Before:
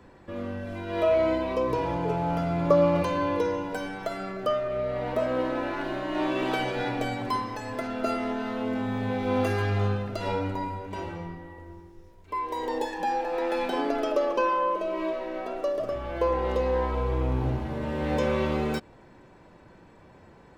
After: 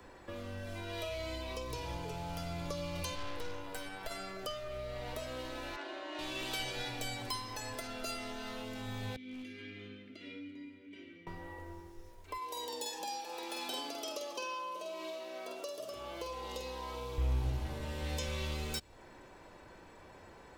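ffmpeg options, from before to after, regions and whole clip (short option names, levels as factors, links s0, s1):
-filter_complex "[0:a]asettb=1/sr,asplit=3[s0][s1][s2];[s0]atrim=end=3.154[s3];[s1]atrim=start=3.15:end=4.11,asetpts=PTS-STARTPTS,afade=t=in:d=0.004:c=qsin,afade=t=out:st=0.956:d=0.004:c=qsin,equalizer=f=5900:w=4.4:g=-9.5,aeval=exprs='(tanh(25.1*val(0)+0.7)-tanh(0.7))/25.1':c=same[s4];[s2]atrim=start=4.106[s5];[s3][s4]acrossfade=d=0.004:c1=hsin:c2=qsin[s6];[s6][s5]acrossfade=d=0.004:c1=qsin:c2=hsin,asettb=1/sr,asplit=3[s7][s8][s9];[s7]atrim=end=5.764[s10];[s8]atrim=start=5.76:end=6.19,asetpts=PTS-STARTPTS,afade=t=in:d=0.004:c=qsin,afade=t=out:st=0.426:d=0.004:c=qsin,highpass=f=290:w=0.5412,highpass=f=290:w=1.3066,adynamicsmooth=sensitivity=2:basefreq=3600[s11];[s9]atrim=start=6.186[s12];[s10][s11]acrossfade=d=0.004:c1=hsin:c2=qsin[s13];[s13][s12]acrossfade=d=0.004:c1=qsin:c2=hsin,asettb=1/sr,asplit=3[s14][s15][s16];[s14]atrim=end=9.164[s17];[s15]atrim=start=9.16:end=11.27,asetpts=PTS-STARTPTS,afade=t=in:d=0.004:c=qsin,afade=t=out:st=2.106:d=0.004:c=qsin,asplit=3[s18][s19][s20];[s18]bandpass=f=270:t=q:w=8,volume=1[s21];[s19]bandpass=f=2290:t=q:w=8,volume=0.501[s22];[s20]bandpass=f=3010:t=q:w=8,volume=0.355[s23];[s21][s22][s23]amix=inputs=3:normalize=0,aeval=exprs='clip(val(0),-1,0.0355)':c=same[s24];[s16]atrim=start=11.266[s25];[s17][s24]acrossfade=d=0.004:c1=hsin:c2=qsin[s26];[s26][s25]acrossfade=d=0.004:c1=qsin:c2=hsin,asettb=1/sr,asplit=3[s27][s28][s29];[s27]atrim=end=12.374[s30];[s28]atrim=start=12.37:end=17.18,asetpts=PTS-STARTPTS,afade=t=in:d=0.004:c=qsin,afade=t=out:st=4.806:d=0.004:c=qsin,highpass=200,equalizer=f=1800:w=1.9:g=-6.5,asplit=2[s31][s32];[s32]adelay=48,volume=0.596[s33];[s31][s33]amix=inputs=2:normalize=0,atrim=end_sample=212121[s34];[s29]atrim=start=17.176[s35];[s30][s34]acrossfade=d=0.004:c1=hsin:c2=qsin[s36];[s36][s35]acrossfade=d=0.004:c1=qsin:c2=hsin,highshelf=f=4400:g=7.5,acrossover=split=140|3000[s37][s38][s39];[s38]acompressor=threshold=0.00891:ratio=6[s40];[s37][s40][s39]amix=inputs=3:normalize=0,equalizer=f=160:w=0.79:g=-8.5"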